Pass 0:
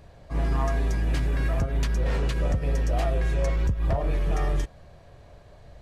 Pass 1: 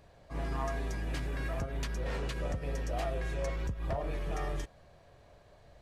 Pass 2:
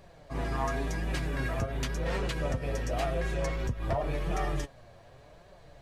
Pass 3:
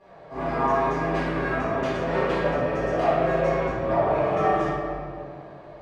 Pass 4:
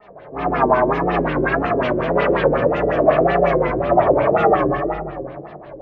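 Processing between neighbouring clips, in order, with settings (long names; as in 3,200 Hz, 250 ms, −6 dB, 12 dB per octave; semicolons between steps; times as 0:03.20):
low-shelf EQ 210 Hz −6.5 dB; level −5.5 dB
flanger 0.91 Hz, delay 5.1 ms, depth 4.1 ms, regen +43%; level +9 dB
resonant band-pass 780 Hz, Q 0.66; convolution reverb RT60 2.2 s, pre-delay 4 ms, DRR −15.5 dB; level −3 dB
auto-filter low-pass sine 5.5 Hz 370–3,400 Hz; tape wow and flutter 130 cents; level +4.5 dB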